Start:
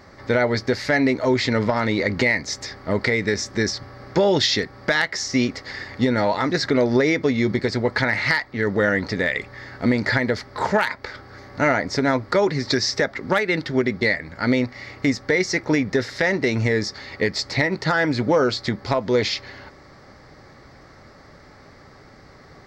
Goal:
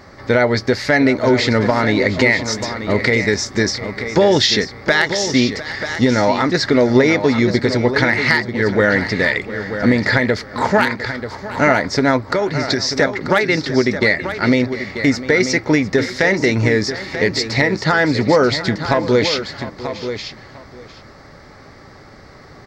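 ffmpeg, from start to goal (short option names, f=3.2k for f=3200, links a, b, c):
-filter_complex "[0:a]asplit=2[a][b];[b]aecho=0:1:703:0.168[c];[a][c]amix=inputs=2:normalize=0,asplit=3[d][e][f];[d]afade=t=out:st=12.2:d=0.02[g];[e]acompressor=threshold=-21dB:ratio=3,afade=t=in:st=12.2:d=0.02,afade=t=out:st=12.93:d=0.02[h];[f]afade=t=in:st=12.93:d=0.02[i];[g][h][i]amix=inputs=3:normalize=0,asplit=2[j][k];[k]aecho=0:1:937:0.316[l];[j][l]amix=inputs=2:normalize=0,volume=5dB"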